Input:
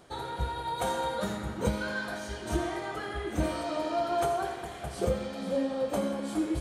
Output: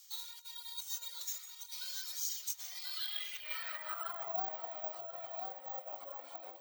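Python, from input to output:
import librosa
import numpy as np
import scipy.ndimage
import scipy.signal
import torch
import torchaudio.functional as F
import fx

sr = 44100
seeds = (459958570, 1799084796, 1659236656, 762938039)

y = fx.high_shelf(x, sr, hz=6500.0, db=-8.5)
y = fx.notch(y, sr, hz=1600.0, q=8.6)
y = fx.doubler(y, sr, ms=21.0, db=-8.0)
y = y + 10.0 ** (-15.5 / 20.0) * np.pad(y, (int(102 * sr / 1000.0), 0))[:len(y)]
y = fx.dereverb_blind(y, sr, rt60_s=0.99)
y = fx.over_compress(y, sr, threshold_db=-34.0, ratio=-0.5)
y = scipy.signal.sosfilt(scipy.signal.butter(4, 310.0, 'highpass', fs=sr, output='sos'), y)
y = fx.echo_feedback(y, sr, ms=1037, feedback_pct=25, wet_db=-6.0)
y = fx.filter_sweep_bandpass(y, sr, from_hz=6100.0, to_hz=750.0, start_s=2.69, end_s=4.38, q=2.9)
y = np.repeat(y[::2], 2)[:len(y)]
y = np.diff(y, prepend=0.0)
y = y * 10.0 ** (15.5 / 20.0)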